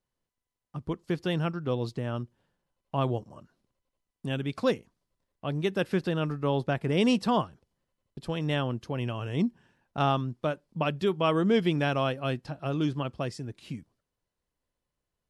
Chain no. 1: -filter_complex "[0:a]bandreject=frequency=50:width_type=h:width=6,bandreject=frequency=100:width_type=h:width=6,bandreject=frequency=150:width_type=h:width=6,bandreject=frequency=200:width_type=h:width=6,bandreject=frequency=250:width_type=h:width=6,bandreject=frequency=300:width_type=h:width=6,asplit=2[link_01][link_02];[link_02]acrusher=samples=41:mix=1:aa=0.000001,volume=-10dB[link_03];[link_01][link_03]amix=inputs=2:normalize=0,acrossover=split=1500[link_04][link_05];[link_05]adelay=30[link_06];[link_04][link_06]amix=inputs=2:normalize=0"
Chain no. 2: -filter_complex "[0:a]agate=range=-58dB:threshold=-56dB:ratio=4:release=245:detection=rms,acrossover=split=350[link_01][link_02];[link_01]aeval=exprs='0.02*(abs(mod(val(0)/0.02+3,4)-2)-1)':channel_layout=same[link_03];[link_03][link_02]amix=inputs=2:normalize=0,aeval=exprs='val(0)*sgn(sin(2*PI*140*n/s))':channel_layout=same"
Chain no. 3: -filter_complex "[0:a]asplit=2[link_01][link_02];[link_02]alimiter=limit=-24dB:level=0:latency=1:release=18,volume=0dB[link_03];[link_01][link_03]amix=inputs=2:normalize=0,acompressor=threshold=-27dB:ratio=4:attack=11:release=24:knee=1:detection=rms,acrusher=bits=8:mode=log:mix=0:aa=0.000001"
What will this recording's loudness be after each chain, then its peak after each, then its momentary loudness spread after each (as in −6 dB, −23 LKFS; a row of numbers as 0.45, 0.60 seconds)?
−29.0, −33.0, −30.0 LKFS; −12.0, −13.0, −16.5 dBFS; 14, 13, 9 LU